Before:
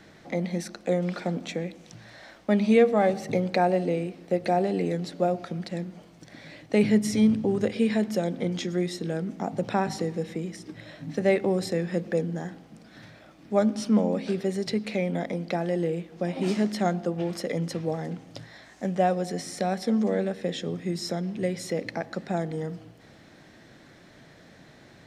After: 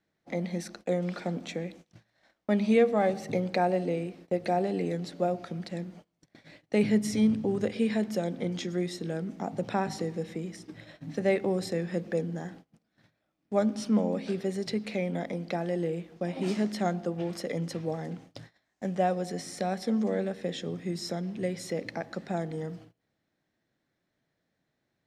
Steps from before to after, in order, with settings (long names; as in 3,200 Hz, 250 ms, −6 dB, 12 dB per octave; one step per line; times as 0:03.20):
noise gate −44 dBFS, range −24 dB
level −3.5 dB